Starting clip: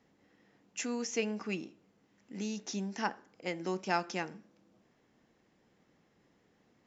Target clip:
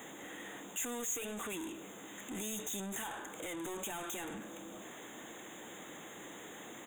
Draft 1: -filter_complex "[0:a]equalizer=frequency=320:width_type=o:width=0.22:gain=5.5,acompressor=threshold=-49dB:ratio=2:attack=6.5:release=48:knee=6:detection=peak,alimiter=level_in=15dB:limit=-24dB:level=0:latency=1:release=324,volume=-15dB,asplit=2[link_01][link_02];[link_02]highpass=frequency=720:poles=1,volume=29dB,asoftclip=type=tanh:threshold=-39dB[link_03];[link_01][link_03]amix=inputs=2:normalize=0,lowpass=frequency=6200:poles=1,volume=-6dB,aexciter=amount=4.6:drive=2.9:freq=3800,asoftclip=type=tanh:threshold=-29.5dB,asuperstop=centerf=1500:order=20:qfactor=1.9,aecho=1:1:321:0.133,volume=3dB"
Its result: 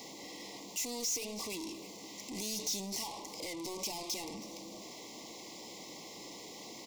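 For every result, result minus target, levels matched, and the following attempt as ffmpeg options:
echo-to-direct +9 dB; 2,000 Hz band −6.0 dB; downward compressor: peak gain reduction +3.5 dB
-filter_complex "[0:a]equalizer=frequency=320:width_type=o:width=0.22:gain=5.5,acompressor=threshold=-49dB:ratio=2:attack=6.5:release=48:knee=6:detection=peak,alimiter=level_in=15dB:limit=-24dB:level=0:latency=1:release=324,volume=-15dB,asplit=2[link_01][link_02];[link_02]highpass=frequency=720:poles=1,volume=29dB,asoftclip=type=tanh:threshold=-39dB[link_03];[link_01][link_03]amix=inputs=2:normalize=0,lowpass=frequency=6200:poles=1,volume=-6dB,aexciter=amount=4.6:drive=2.9:freq=3800,asoftclip=type=tanh:threshold=-29.5dB,asuperstop=centerf=1500:order=20:qfactor=1.9,aecho=1:1:321:0.0473,volume=3dB"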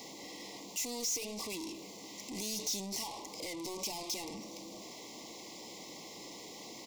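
2,000 Hz band −6.0 dB; downward compressor: peak gain reduction +3.5 dB
-filter_complex "[0:a]equalizer=frequency=320:width_type=o:width=0.22:gain=5.5,acompressor=threshold=-49dB:ratio=2:attack=6.5:release=48:knee=6:detection=peak,alimiter=level_in=15dB:limit=-24dB:level=0:latency=1:release=324,volume=-15dB,asplit=2[link_01][link_02];[link_02]highpass=frequency=720:poles=1,volume=29dB,asoftclip=type=tanh:threshold=-39dB[link_03];[link_01][link_03]amix=inputs=2:normalize=0,lowpass=frequency=6200:poles=1,volume=-6dB,aexciter=amount=4.6:drive=2.9:freq=3800,asoftclip=type=tanh:threshold=-29.5dB,asuperstop=centerf=4900:order=20:qfactor=1.9,aecho=1:1:321:0.0473,volume=3dB"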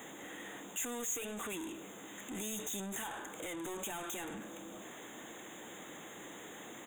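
downward compressor: peak gain reduction +3.5 dB
-filter_complex "[0:a]equalizer=frequency=320:width_type=o:width=0.22:gain=5.5,acompressor=threshold=-42dB:ratio=2:attack=6.5:release=48:knee=6:detection=peak,alimiter=level_in=15dB:limit=-24dB:level=0:latency=1:release=324,volume=-15dB,asplit=2[link_01][link_02];[link_02]highpass=frequency=720:poles=1,volume=29dB,asoftclip=type=tanh:threshold=-39dB[link_03];[link_01][link_03]amix=inputs=2:normalize=0,lowpass=frequency=6200:poles=1,volume=-6dB,aexciter=amount=4.6:drive=2.9:freq=3800,asoftclip=type=tanh:threshold=-29.5dB,asuperstop=centerf=4900:order=20:qfactor=1.9,aecho=1:1:321:0.0473,volume=3dB"

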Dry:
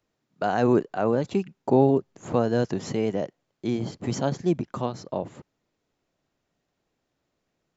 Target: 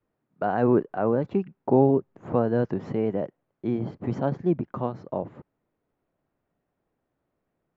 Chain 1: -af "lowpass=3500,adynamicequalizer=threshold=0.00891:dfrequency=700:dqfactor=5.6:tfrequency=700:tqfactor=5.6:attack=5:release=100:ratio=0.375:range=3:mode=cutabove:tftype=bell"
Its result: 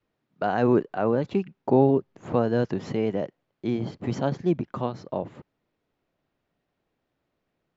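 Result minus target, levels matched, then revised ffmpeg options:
4,000 Hz band +10.5 dB
-af "lowpass=1600,adynamicequalizer=threshold=0.00891:dfrequency=700:dqfactor=5.6:tfrequency=700:tqfactor=5.6:attack=5:release=100:ratio=0.375:range=3:mode=cutabove:tftype=bell"

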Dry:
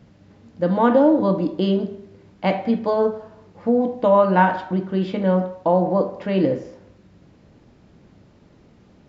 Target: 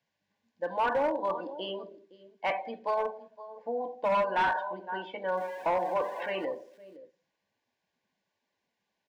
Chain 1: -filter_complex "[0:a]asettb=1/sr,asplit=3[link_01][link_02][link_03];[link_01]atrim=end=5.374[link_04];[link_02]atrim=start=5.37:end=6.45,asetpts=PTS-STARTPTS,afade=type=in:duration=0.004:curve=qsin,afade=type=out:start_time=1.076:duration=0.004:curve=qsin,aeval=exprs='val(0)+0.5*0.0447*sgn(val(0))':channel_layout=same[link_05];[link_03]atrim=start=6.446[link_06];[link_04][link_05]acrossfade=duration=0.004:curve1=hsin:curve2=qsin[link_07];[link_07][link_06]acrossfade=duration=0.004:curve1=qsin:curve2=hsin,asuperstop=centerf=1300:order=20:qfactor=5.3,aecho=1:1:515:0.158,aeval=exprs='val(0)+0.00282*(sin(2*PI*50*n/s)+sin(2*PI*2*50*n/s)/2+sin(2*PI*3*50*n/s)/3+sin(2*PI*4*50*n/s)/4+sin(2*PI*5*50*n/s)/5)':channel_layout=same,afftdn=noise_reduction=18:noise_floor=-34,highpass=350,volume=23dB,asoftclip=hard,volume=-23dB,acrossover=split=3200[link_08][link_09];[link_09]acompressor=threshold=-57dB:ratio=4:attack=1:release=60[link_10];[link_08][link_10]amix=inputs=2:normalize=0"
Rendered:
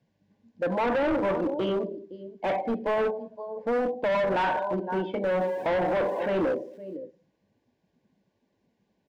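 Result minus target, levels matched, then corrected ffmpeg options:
250 Hz band +8.0 dB
-filter_complex "[0:a]asettb=1/sr,asplit=3[link_01][link_02][link_03];[link_01]atrim=end=5.374[link_04];[link_02]atrim=start=5.37:end=6.45,asetpts=PTS-STARTPTS,afade=type=in:duration=0.004:curve=qsin,afade=type=out:start_time=1.076:duration=0.004:curve=qsin,aeval=exprs='val(0)+0.5*0.0447*sgn(val(0))':channel_layout=same[link_05];[link_03]atrim=start=6.446[link_06];[link_04][link_05]acrossfade=duration=0.004:curve1=hsin:curve2=qsin[link_07];[link_07][link_06]acrossfade=duration=0.004:curve1=qsin:curve2=hsin,asuperstop=centerf=1300:order=20:qfactor=5.3,aecho=1:1:515:0.158,aeval=exprs='val(0)+0.00282*(sin(2*PI*50*n/s)+sin(2*PI*2*50*n/s)/2+sin(2*PI*3*50*n/s)/3+sin(2*PI*4*50*n/s)/4+sin(2*PI*5*50*n/s)/5)':channel_layout=same,afftdn=noise_reduction=18:noise_floor=-34,highpass=1000,volume=23dB,asoftclip=hard,volume=-23dB,acrossover=split=3200[link_08][link_09];[link_09]acompressor=threshold=-57dB:ratio=4:attack=1:release=60[link_10];[link_08][link_10]amix=inputs=2:normalize=0"

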